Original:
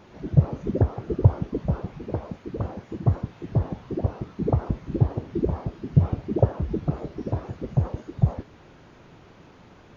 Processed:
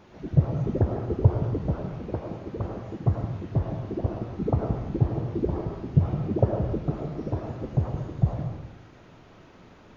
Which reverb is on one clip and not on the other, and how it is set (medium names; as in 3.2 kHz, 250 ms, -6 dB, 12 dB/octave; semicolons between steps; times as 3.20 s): algorithmic reverb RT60 0.92 s, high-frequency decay 0.8×, pre-delay 65 ms, DRR 3 dB; trim -2.5 dB